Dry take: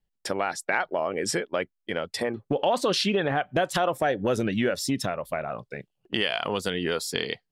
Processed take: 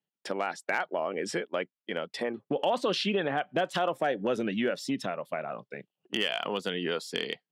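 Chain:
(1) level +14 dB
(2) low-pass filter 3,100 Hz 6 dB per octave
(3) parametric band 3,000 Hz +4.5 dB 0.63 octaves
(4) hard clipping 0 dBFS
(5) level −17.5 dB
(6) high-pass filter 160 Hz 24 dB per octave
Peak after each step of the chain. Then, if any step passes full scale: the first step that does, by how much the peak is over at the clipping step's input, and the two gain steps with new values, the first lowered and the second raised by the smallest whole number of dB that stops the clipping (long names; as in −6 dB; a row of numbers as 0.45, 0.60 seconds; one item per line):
+4.5, +2.5, +5.0, 0.0, −17.5, −14.0 dBFS
step 1, 5.0 dB
step 1 +9 dB, step 5 −12.5 dB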